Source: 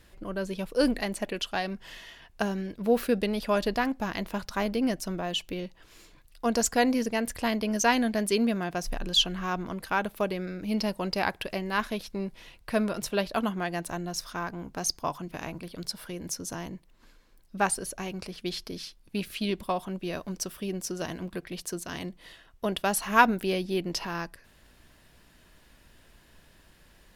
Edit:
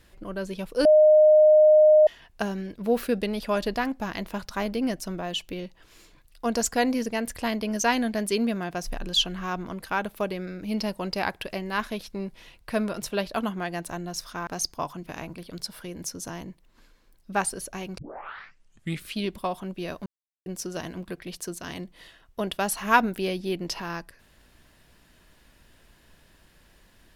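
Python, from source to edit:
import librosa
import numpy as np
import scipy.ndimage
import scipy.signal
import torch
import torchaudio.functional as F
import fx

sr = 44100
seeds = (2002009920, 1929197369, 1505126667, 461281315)

y = fx.edit(x, sr, fx.bleep(start_s=0.85, length_s=1.22, hz=614.0, db=-12.0),
    fx.cut(start_s=14.47, length_s=0.25),
    fx.tape_start(start_s=18.23, length_s=1.14),
    fx.silence(start_s=20.31, length_s=0.4), tone=tone)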